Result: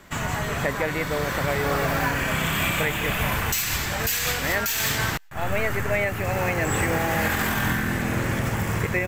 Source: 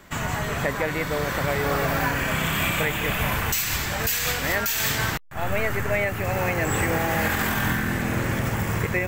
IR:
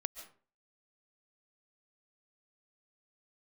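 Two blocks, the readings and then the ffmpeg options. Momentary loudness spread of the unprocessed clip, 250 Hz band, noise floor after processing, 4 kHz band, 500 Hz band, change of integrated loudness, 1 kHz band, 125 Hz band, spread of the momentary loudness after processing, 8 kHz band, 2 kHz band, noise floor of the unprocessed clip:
3 LU, 0.0 dB, −30 dBFS, +0.5 dB, 0.0 dB, 0.0 dB, 0.0 dB, 0.0 dB, 3 LU, +0.5 dB, 0.0 dB, −30 dBFS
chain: -filter_complex "[0:a]aresample=32000,aresample=44100,asplit=2[link_01][link_02];[link_02]aderivative[link_03];[1:a]atrim=start_sample=2205,asetrate=57330,aresample=44100,highshelf=frequency=4600:gain=-10.5[link_04];[link_03][link_04]afir=irnorm=-1:irlink=0,volume=-13dB[link_05];[link_01][link_05]amix=inputs=2:normalize=0"

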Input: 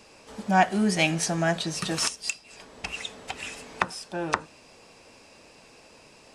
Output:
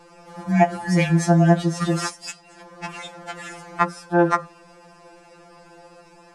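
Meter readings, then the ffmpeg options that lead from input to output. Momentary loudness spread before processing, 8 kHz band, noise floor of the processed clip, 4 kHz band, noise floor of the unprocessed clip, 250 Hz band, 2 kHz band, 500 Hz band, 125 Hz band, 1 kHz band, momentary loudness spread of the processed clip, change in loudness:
15 LU, −3.5 dB, −50 dBFS, −4.5 dB, −54 dBFS, +7.5 dB, +0.5 dB, +7.5 dB, +12.0 dB, +4.0 dB, 19 LU, +7.0 dB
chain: -af "highshelf=frequency=2000:width_type=q:width=1.5:gain=-8.5,afftfilt=real='re*2.83*eq(mod(b,8),0)':imag='im*2.83*eq(mod(b,8),0)':win_size=2048:overlap=0.75,volume=8.5dB"

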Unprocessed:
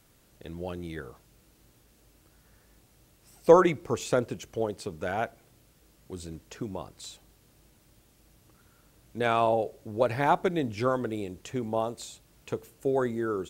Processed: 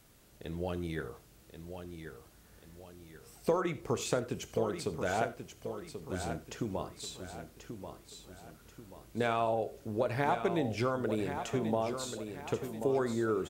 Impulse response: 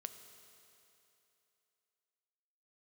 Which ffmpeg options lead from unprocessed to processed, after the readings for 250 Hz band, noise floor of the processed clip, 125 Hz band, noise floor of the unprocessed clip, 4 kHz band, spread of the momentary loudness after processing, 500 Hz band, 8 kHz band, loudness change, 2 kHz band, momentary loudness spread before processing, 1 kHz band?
−3.5 dB, −60 dBFS, −2.0 dB, −63 dBFS, −1.5 dB, 20 LU, −5.5 dB, 0.0 dB, −6.5 dB, −4.0 dB, 18 LU, −6.0 dB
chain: -filter_complex "[0:a]acompressor=threshold=-28dB:ratio=4,aecho=1:1:1085|2170|3255|4340|5425:0.376|0.158|0.0663|0.0278|0.0117[link_01];[1:a]atrim=start_sample=2205,atrim=end_sample=4410[link_02];[link_01][link_02]afir=irnorm=-1:irlink=0,volume=4.5dB"

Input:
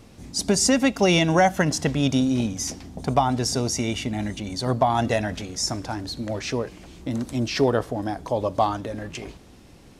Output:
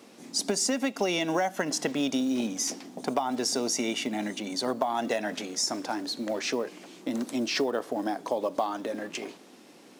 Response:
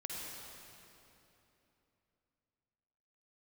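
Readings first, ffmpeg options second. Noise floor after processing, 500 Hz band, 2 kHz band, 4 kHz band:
−53 dBFS, −5.5 dB, −5.5 dB, −3.5 dB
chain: -af "highpass=frequency=230:width=0.5412,highpass=frequency=230:width=1.3066,acompressor=threshold=-24dB:ratio=6,acrusher=bits=8:mode=log:mix=0:aa=0.000001"

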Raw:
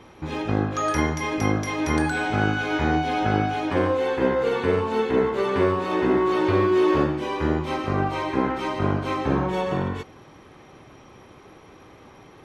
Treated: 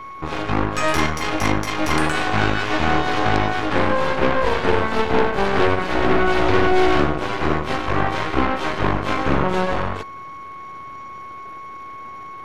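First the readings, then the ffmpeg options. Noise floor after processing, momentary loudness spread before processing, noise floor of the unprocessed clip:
−35 dBFS, 5 LU, −49 dBFS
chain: -af "aeval=exprs='val(0)+0.0224*sin(2*PI*1100*n/s)':channel_layout=same,aeval=exprs='0.473*(cos(1*acos(clip(val(0)/0.473,-1,1)))-cos(1*PI/2))+0.133*(cos(8*acos(clip(val(0)/0.473,-1,1)))-cos(8*PI/2))':channel_layout=same"

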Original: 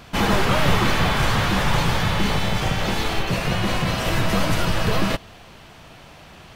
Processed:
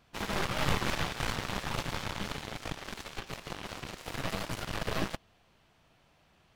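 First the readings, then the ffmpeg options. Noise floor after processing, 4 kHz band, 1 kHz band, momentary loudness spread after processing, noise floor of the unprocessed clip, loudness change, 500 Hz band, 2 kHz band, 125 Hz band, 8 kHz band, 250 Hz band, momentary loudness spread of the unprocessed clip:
−66 dBFS, −13.0 dB, −14.0 dB, 11 LU, −45 dBFS, −14.0 dB, −14.0 dB, −13.5 dB, −16.5 dB, −11.0 dB, −15.5 dB, 5 LU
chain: -af "aeval=exprs='0.562*(cos(1*acos(clip(val(0)/0.562,-1,1)))-cos(1*PI/2))+0.0708*(cos(2*acos(clip(val(0)/0.562,-1,1)))-cos(2*PI/2))+0.251*(cos(3*acos(clip(val(0)/0.562,-1,1)))-cos(3*PI/2))+0.158*(cos(5*acos(clip(val(0)/0.562,-1,1)))-cos(5*PI/2))+0.1*(cos(7*acos(clip(val(0)/0.562,-1,1)))-cos(7*PI/2))':channel_layout=same,volume=-6.5dB"

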